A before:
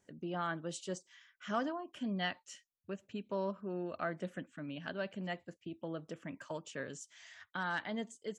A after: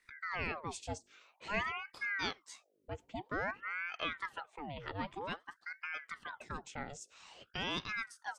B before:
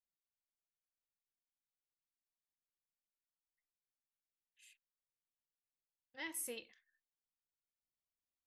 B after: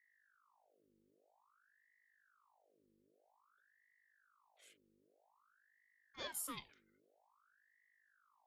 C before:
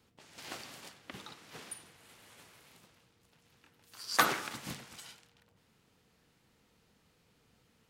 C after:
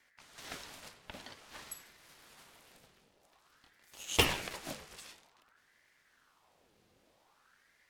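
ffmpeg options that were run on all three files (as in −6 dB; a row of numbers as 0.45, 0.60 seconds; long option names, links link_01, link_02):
-af "aeval=exprs='val(0)+0.000178*(sin(2*PI*50*n/s)+sin(2*PI*2*50*n/s)/2+sin(2*PI*3*50*n/s)/3+sin(2*PI*4*50*n/s)/4+sin(2*PI*5*50*n/s)/5)':channel_layout=same,aeval=exprs='val(0)*sin(2*PI*1100*n/s+1100*0.75/0.51*sin(2*PI*0.51*n/s))':channel_layout=same,volume=2dB"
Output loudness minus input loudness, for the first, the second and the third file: +0.5, −1.0, −0.5 LU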